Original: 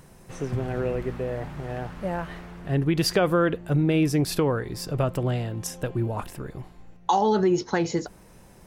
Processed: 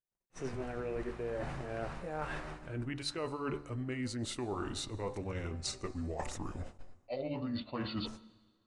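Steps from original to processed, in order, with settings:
pitch glide at a constant tempo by −8 semitones starting unshifted
noise gate −44 dBFS, range −53 dB
parametric band 120 Hz −6.5 dB 2.9 octaves
notch filter 3,300 Hz, Q 21
hum removal 72.95 Hz, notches 20
reversed playback
downward compressor 12 to 1, threshold −38 dBFS, peak gain reduction 18.5 dB
reversed playback
downsampling to 22,050 Hz
on a send at −21.5 dB: convolution reverb RT60 1.8 s, pre-delay 93 ms
on the sum: level that may rise only so fast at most 570 dB per second
level +3.5 dB

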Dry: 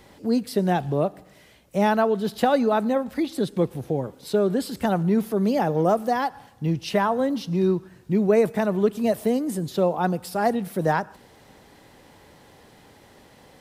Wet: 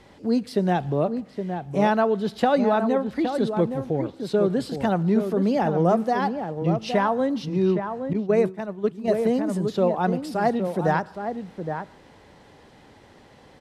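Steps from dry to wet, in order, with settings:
high-frequency loss of the air 58 metres
slap from a distant wall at 140 metres, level −7 dB
0:08.13–0:09.08: downward expander −14 dBFS

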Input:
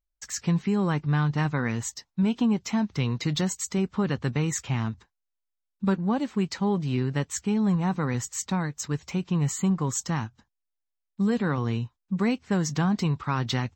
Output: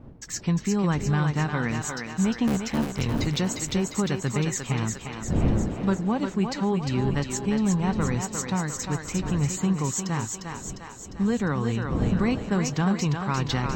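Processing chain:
0:02.47–0:03.08: sub-harmonics by changed cycles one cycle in 3, muted
wind on the microphone 200 Hz −34 dBFS
feedback echo with a high-pass in the loop 352 ms, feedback 60%, high-pass 340 Hz, level −4 dB

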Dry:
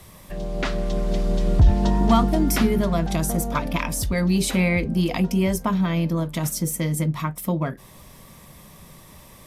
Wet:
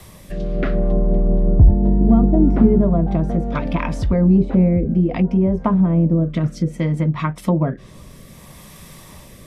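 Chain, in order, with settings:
rotating-speaker cabinet horn 0.65 Hz
treble cut that deepens with the level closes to 580 Hz, closed at −19 dBFS
level +7.5 dB

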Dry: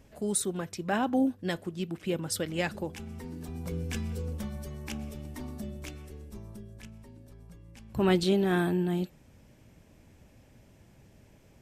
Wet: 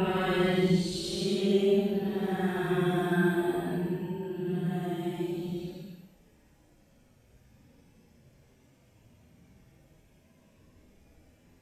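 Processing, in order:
random phases in long frames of 100 ms
extreme stretch with random phases 5.7×, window 0.10 s, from 0:08.05
level −2.5 dB

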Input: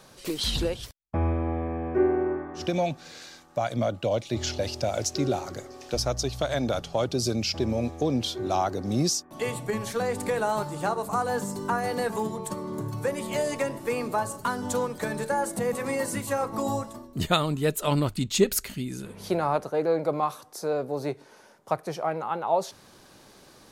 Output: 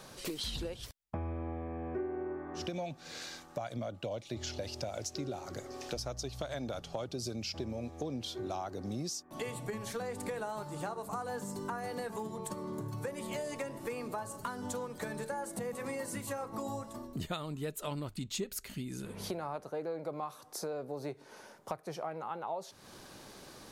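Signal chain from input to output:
downward compressor 4 to 1, threshold −39 dBFS, peak gain reduction 20 dB
level +1 dB

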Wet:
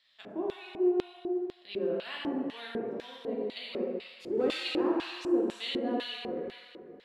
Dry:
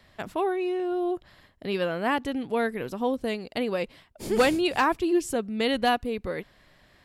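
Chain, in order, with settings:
dense smooth reverb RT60 2.3 s, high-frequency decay 0.95×, DRR −5 dB
auto-filter band-pass square 2 Hz 350–3,600 Hz
level −4 dB

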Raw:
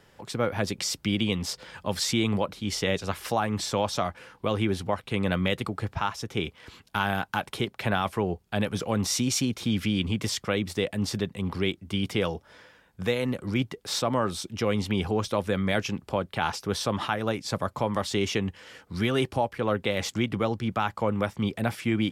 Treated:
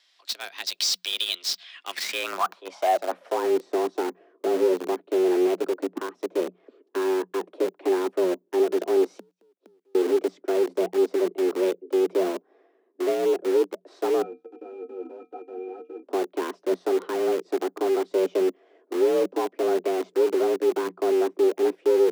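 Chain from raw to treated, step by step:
band-pass filter sweep 4,000 Hz → 220 Hz, 0:01.48–0:03.55
in parallel at −10 dB: log-companded quantiser 2 bits
0:09.18–0:09.95: on the sum: gate with flip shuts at −33 dBFS, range −42 dB
0:14.22–0:16.03: resonances in every octave C#, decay 0.16 s
frequency shifter +180 Hz
level +6.5 dB

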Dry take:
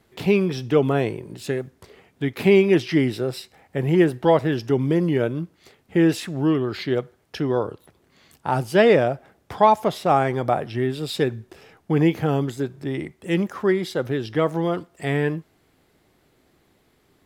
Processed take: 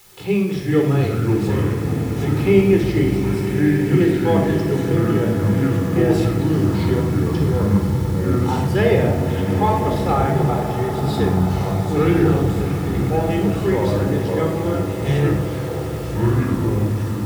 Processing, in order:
0:03.11–0:03.79: inverse Chebyshev high-pass filter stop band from 900 Hz, stop band 80 dB
in parallel at −5 dB: bit-depth reduction 6 bits, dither triangular
on the sum: delay with pitch and tempo change per echo 282 ms, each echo −5 semitones, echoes 3
on a send: echo that builds up and dies away 97 ms, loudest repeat 8, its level −17 dB
on the sum: rectangular room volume 2,400 cubic metres, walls furnished, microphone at 4.1 metres
level −10 dB

